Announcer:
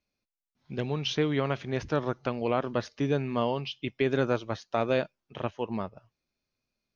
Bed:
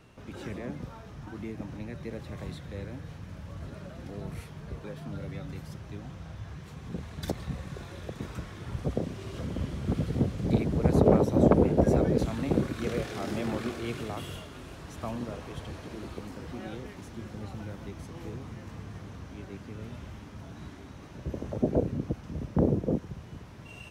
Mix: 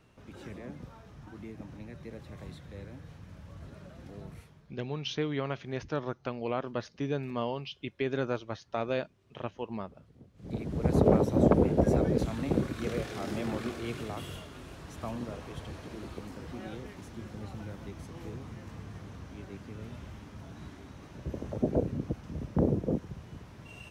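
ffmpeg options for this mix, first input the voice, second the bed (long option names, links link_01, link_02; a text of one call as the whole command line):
ffmpeg -i stem1.wav -i stem2.wav -filter_complex "[0:a]adelay=4000,volume=-5dB[link_01];[1:a]volume=20.5dB,afade=type=out:start_time=4.2:duration=0.56:silence=0.0749894,afade=type=in:start_time=10.34:duration=0.63:silence=0.0473151[link_02];[link_01][link_02]amix=inputs=2:normalize=0" out.wav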